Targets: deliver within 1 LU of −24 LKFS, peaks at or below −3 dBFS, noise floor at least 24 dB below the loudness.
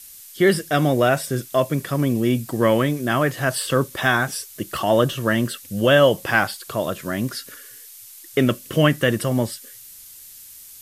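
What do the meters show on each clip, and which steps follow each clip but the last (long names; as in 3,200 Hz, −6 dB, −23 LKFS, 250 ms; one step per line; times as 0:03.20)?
background noise floor −43 dBFS; target noise floor −45 dBFS; integrated loudness −20.5 LKFS; sample peak −3.0 dBFS; target loudness −24.0 LKFS
→ noise reduction from a noise print 6 dB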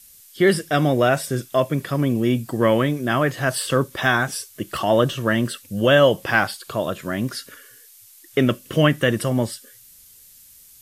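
background noise floor −49 dBFS; integrated loudness −20.5 LKFS; sample peak −3.0 dBFS; target loudness −24.0 LKFS
→ level −3.5 dB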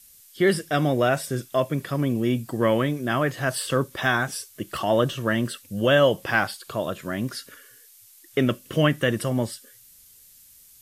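integrated loudness −24.0 LKFS; sample peak −6.5 dBFS; background noise floor −52 dBFS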